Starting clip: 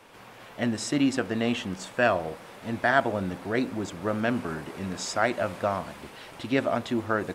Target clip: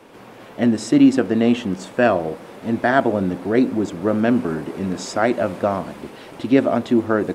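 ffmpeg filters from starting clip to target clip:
-af "equalizer=f=300:t=o:w=2.2:g=10.5,volume=1.5dB"

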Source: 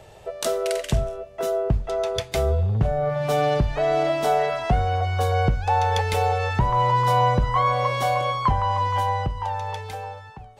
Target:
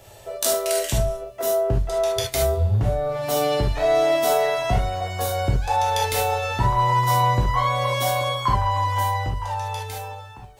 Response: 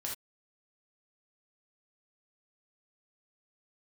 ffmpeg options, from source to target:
-filter_complex "[0:a]aemphasis=mode=production:type=50fm[a];[1:a]atrim=start_sample=2205,atrim=end_sample=3528[b];[a][b]afir=irnorm=-1:irlink=0"

